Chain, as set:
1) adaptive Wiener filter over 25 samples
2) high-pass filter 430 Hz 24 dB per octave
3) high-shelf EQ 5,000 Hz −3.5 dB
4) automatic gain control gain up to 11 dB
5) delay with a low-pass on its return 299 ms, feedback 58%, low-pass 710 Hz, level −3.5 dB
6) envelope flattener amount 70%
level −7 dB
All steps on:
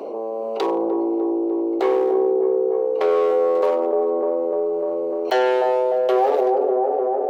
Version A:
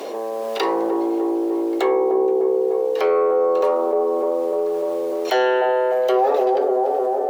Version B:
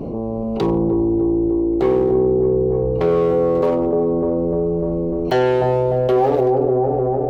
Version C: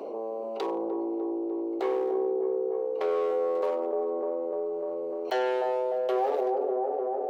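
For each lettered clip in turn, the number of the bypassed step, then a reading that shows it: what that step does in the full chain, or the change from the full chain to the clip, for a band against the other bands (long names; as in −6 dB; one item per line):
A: 1, 2 kHz band +3.5 dB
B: 2, 250 Hz band +7.0 dB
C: 4, change in integrated loudness −9.0 LU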